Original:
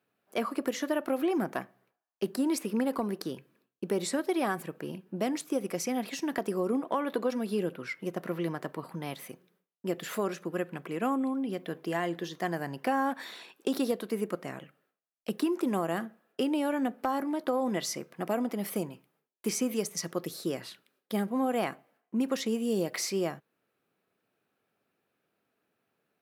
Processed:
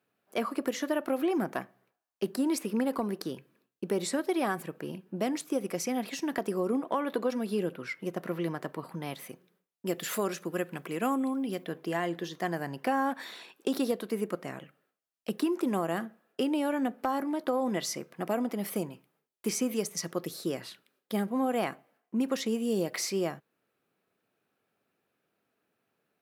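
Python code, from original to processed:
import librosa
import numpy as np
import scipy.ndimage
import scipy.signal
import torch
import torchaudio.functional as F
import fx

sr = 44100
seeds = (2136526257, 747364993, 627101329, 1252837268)

y = fx.high_shelf(x, sr, hz=3800.0, db=8.0, at=(9.86, 11.64))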